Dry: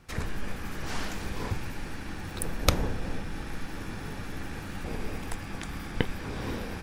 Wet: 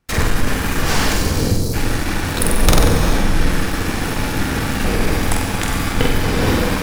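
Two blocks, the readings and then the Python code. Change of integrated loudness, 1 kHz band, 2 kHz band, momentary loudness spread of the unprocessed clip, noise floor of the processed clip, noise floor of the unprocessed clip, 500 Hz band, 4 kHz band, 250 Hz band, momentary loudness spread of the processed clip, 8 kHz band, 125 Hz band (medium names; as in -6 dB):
+16.5 dB, +16.5 dB, +16.5 dB, 10 LU, -22 dBFS, -39 dBFS, +16.5 dB, +16.0 dB, +16.5 dB, 6 LU, +17.5 dB, +16.0 dB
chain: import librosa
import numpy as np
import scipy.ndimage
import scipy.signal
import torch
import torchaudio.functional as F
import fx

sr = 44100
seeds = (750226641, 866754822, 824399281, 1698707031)

p1 = fx.spec_erase(x, sr, start_s=1.14, length_s=0.59, low_hz=570.0, high_hz=3900.0)
p2 = fx.high_shelf(p1, sr, hz=7600.0, db=5.0)
p3 = p2 + fx.room_flutter(p2, sr, wall_m=8.0, rt60_s=0.53, dry=0)
p4 = fx.leveller(p3, sr, passes=5)
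p5 = fx.rev_gated(p4, sr, seeds[0], gate_ms=460, shape='flat', drr_db=5.0)
y = F.gain(torch.from_numpy(p5), -3.0).numpy()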